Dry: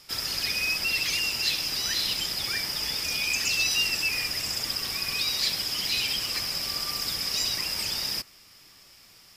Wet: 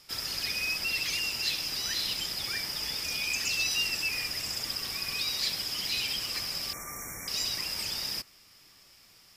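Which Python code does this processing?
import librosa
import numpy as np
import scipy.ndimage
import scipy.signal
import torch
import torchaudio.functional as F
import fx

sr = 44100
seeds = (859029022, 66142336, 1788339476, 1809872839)

y = fx.brickwall_bandstop(x, sr, low_hz=2400.0, high_hz=5500.0, at=(6.73, 7.28))
y = y * 10.0 ** (-4.0 / 20.0)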